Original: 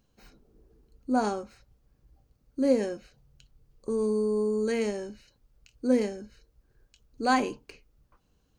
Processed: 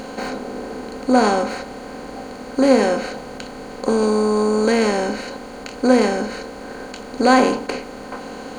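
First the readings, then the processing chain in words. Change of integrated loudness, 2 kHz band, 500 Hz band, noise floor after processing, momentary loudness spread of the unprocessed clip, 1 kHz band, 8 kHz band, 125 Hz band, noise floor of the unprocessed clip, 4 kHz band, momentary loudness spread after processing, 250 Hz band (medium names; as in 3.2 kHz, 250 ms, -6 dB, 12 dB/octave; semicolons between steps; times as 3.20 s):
+9.5 dB, +13.5 dB, +11.0 dB, -35 dBFS, 17 LU, +12.0 dB, +13.5 dB, no reading, -70 dBFS, +14.5 dB, 18 LU, +10.5 dB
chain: spectral levelling over time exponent 0.4; trim +7 dB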